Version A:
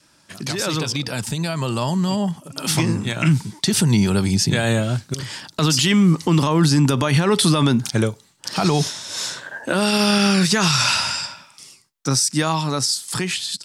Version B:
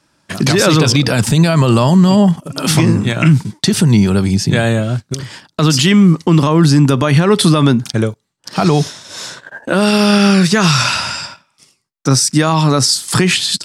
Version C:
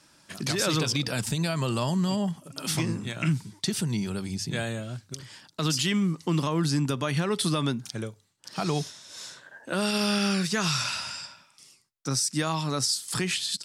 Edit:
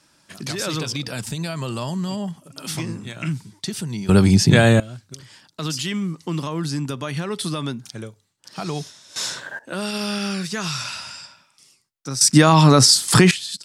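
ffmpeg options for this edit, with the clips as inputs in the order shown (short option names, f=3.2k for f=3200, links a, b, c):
-filter_complex "[1:a]asplit=2[a][b];[2:a]asplit=4[c][d][e][f];[c]atrim=end=4.092[g];[a]atrim=start=4.088:end=4.802[h];[d]atrim=start=4.798:end=9.162[i];[0:a]atrim=start=9.158:end=9.592[j];[e]atrim=start=9.588:end=12.212[k];[b]atrim=start=12.208:end=13.312[l];[f]atrim=start=13.308[m];[g][h]acrossfade=d=0.004:c1=hsin:c2=hsin[n];[n][i]acrossfade=d=0.004:c1=hsin:c2=hsin[o];[o][j]acrossfade=d=0.004:c1=hsin:c2=hsin[p];[p][k]acrossfade=d=0.004:c1=hsin:c2=hsin[q];[q][l]acrossfade=d=0.004:c1=hsin:c2=hsin[r];[r][m]acrossfade=d=0.004:c1=hsin:c2=hsin"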